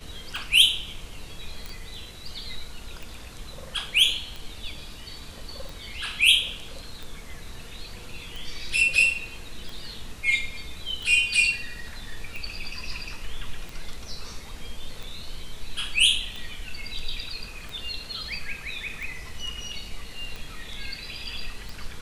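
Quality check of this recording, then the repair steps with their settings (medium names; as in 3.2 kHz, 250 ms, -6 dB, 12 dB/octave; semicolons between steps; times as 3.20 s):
tick 45 rpm
1.66 s: pop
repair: de-click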